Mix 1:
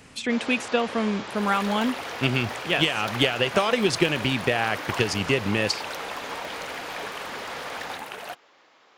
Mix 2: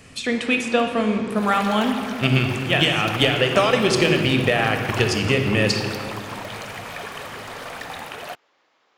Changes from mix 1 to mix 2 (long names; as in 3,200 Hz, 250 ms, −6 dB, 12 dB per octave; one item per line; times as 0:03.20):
first sound −7.0 dB
reverb: on, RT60 2.0 s